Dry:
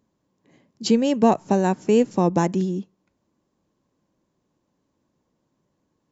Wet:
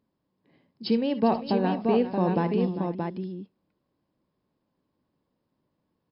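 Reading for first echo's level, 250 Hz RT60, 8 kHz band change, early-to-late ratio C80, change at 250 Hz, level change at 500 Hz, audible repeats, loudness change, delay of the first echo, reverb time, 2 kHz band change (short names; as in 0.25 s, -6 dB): -15.0 dB, none, n/a, none, -4.5 dB, -4.5 dB, 4, -5.0 dB, 58 ms, none, -4.5 dB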